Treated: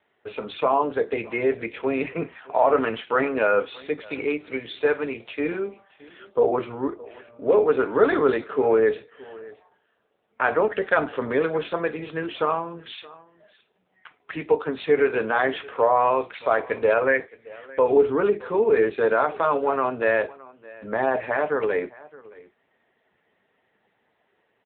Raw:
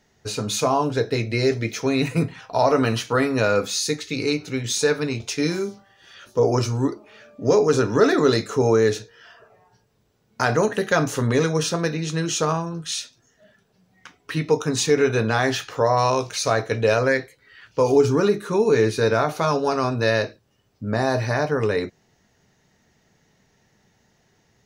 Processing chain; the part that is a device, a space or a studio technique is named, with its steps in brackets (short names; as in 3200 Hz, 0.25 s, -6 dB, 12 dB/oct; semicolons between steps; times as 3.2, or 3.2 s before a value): satellite phone (BPF 370–3300 Hz; echo 0.619 s -21.5 dB; gain +1.5 dB; AMR-NB 6.7 kbps 8000 Hz)